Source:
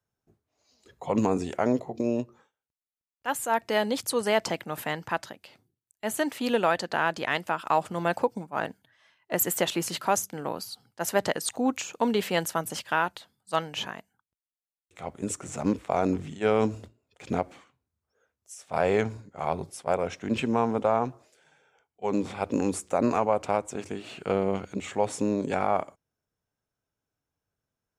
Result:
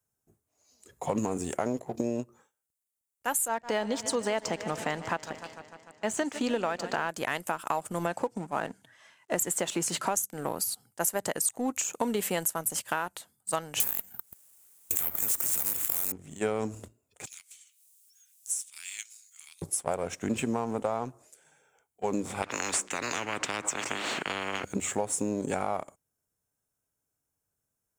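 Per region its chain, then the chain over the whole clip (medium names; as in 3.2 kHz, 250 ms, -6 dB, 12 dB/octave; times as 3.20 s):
3.48–7.09 s: low-pass 6.2 kHz 24 dB/octave + modulated delay 149 ms, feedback 74%, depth 91 cents, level -16 dB
8.06–10.17 s: companding laws mixed up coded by mu + band-pass 110–6300 Hz
13.80–16.12 s: careless resampling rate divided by 3×, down none, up zero stuff + spectrum-flattening compressor 4:1
17.26–19.62 s: inverse Chebyshev high-pass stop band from 500 Hz, stop band 80 dB + upward compressor, threshold -50 dBFS
22.42–24.64 s: Chebyshev high-pass 280 Hz, order 3 + tape spacing loss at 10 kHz 35 dB + spectrum-flattening compressor 10:1
whole clip: resonant high shelf 6 kHz +11 dB, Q 1.5; compression, threshold -30 dBFS; waveshaping leveller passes 1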